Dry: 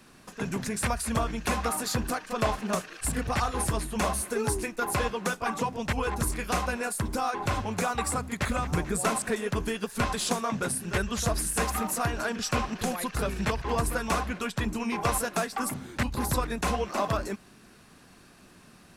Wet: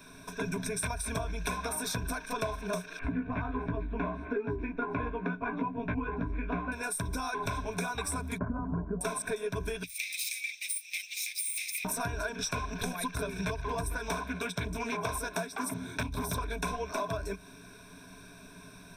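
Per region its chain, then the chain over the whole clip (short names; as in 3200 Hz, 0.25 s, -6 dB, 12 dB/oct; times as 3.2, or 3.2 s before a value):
2.99–6.72 LPF 2400 Hz 24 dB/oct + bell 270 Hz +13.5 dB 0.44 oct + doubler 17 ms -4.5 dB
8.38–9.01 steep low-pass 1300 Hz + bell 230 Hz +10.5 dB 0.51 oct
9.83–11.85 minimum comb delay 0.44 ms + steep high-pass 2000 Hz 96 dB/oct
13.93–16.62 HPF 47 Hz + Doppler distortion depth 0.5 ms
whole clip: ripple EQ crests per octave 1.6, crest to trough 16 dB; compressor, threshold -31 dBFS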